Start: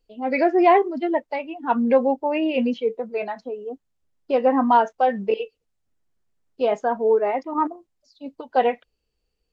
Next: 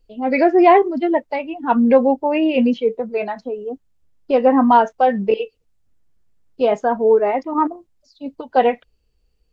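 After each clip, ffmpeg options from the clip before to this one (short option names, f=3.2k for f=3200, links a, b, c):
-af "lowshelf=f=160:g=10,volume=3.5dB"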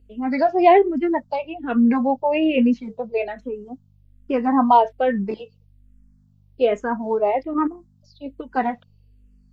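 -filter_complex "[0:a]aeval=exprs='val(0)+0.00316*(sin(2*PI*50*n/s)+sin(2*PI*2*50*n/s)/2+sin(2*PI*3*50*n/s)/3+sin(2*PI*4*50*n/s)/4+sin(2*PI*5*50*n/s)/5)':c=same,asplit=2[a][b];[b]afreqshift=-1.2[c];[a][c]amix=inputs=2:normalize=1"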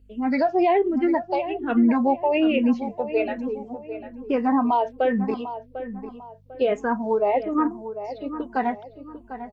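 -filter_complex "[0:a]alimiter=limit=-12.5dB:level=0:latency=1:release=116,asplit=2[a][b];[b]adelay=748,lowpass=f=1.9k:p=1,volume=-11dB,asplit=2[c][d];[d]adelay=748,lowpass=f=1.9k:p=1,volume=0.37,asplit=2[e][f];[f]adelay=748,lowpass=f=1.9k:p=1,volume=0.37,asplit=2[g][h];[h]adelay=748,lowpass=f=1.9k:p=1,volume=0.37[i];[c][e][g][i]amix=inputs=4:normalize=0[j];[a][j]amix=inputs=2:normalize=0"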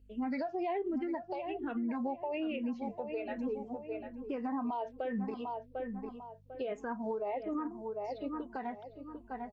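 -af "acompressor=threshold=-23dB:ratio=6,alimiter=limit=-21.5dB:level=0:latency=1:release=209,volume=-6.5dB"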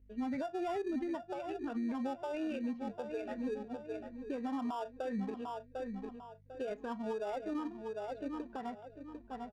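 -filter_complex "[0:a]asplit=2[a][b];[b]acrusher=samples=21:mix=1:aa=0.000001,volume=-6.5dB[c];[a][c]amix=inputs=2:normalize=0,adynamicsmooth=sensitivity=5.5:basefreq=2.7k,volume=-4.5dB"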